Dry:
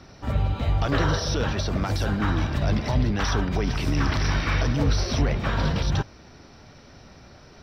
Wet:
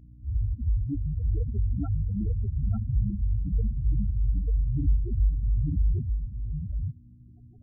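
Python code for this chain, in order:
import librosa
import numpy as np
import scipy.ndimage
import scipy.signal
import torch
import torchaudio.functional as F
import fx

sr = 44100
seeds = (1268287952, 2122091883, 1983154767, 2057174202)

y = fx.spec_topn(x, sr, count=2)
y = fx.dmg_buzz(y, sr, base_hz=60.0, harmonics=5, level_db=-52.0, tilt_db=-6, odd_only=False)
y = y + 10.0 ** (-3.0 / 20.0) * np.pad(y, (int(892 * sr / 1000.0), 0))[:len(y)]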